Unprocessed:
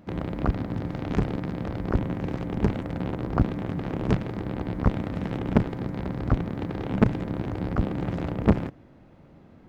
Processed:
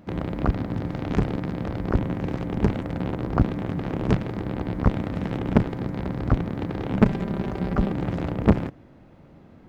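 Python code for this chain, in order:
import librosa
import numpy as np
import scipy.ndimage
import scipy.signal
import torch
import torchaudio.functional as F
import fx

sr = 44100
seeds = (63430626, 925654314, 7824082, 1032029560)

y = fx.comb(x, sr, ms=5.1, depth=0.55, at=(7.03, 7.92))
y = y * librosa.db_to_amplitude(2.0)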